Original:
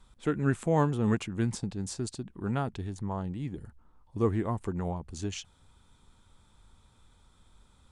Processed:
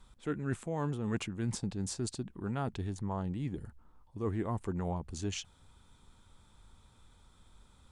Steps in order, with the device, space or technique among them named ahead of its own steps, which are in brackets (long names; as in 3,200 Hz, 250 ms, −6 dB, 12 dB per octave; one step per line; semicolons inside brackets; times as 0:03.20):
compression on the reversed sound (reversed playback; downward compressor 10 to 1, threshold −30 dBFS, peak gain reduction 11.5 dB; reversed playback)